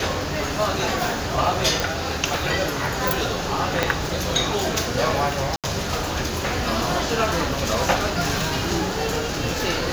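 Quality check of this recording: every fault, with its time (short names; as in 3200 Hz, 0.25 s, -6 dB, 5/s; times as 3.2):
1.8 pop
3.83 pop -4 dBFS
5.56–5.64 gap 77 ms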